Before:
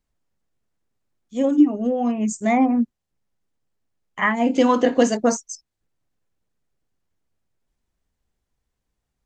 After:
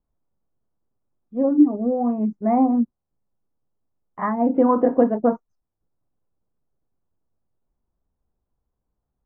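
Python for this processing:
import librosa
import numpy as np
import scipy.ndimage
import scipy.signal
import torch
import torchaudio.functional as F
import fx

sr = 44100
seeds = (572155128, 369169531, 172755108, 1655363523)

y = scipy.signal.sosfilt(scipy.signal.butter(4, 1200.0, 'lowpass', fs=sr, output='sos'), x)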